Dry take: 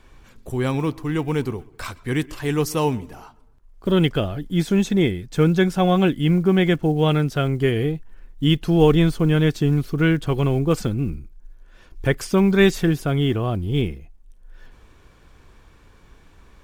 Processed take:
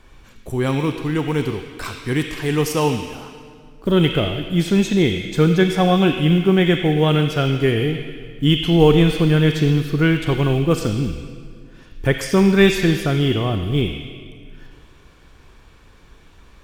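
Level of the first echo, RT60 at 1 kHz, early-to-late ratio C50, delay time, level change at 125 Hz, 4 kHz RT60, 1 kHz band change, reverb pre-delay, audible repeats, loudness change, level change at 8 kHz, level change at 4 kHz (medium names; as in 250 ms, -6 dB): no echo, 1.9 s, 4.5 dB, no echo, +2.0 dB, 1.6 s, +2.5 dB, 28 ms, no echo, +2.5 dB, +3.5 dB, +5.5 dB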